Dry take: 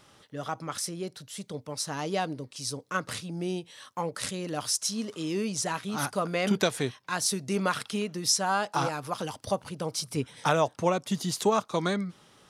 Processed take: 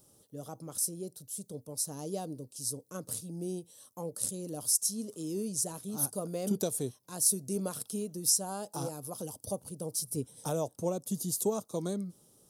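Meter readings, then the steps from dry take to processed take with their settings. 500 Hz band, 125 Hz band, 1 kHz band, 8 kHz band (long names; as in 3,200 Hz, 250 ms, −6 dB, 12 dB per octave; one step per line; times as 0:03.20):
−6.0 dB, −5.0 dB, −14.0 dB, +1.5 dB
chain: drawn EQ curve 500 Hz 0 dB, 2,000 Hz −22 dB, 12,000 Hz +15 dB
level −5 dB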